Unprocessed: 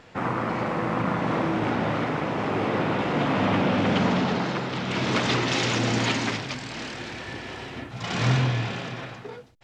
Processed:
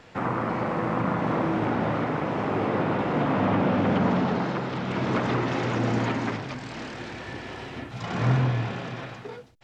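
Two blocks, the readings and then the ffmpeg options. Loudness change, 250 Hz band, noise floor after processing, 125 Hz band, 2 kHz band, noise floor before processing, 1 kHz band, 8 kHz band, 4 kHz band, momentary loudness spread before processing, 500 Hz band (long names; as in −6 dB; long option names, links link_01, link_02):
−1.0 dB, 0.0 dB, −41 dBFS, 0.0 dB, −4.0 dB, −41 dBFS, −0.5 dB, below −10 dB, −9.5 dB, 13 LU, 0.0 dB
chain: -filter_complex "[0:a]acrossover=split=490|1800[link_01][link_02][link_03];[link_03]acompressor=threshold=-44dB:ratio=6[link_04];[link_01][link_02][link_04]amix=inputs=3:normalize=0"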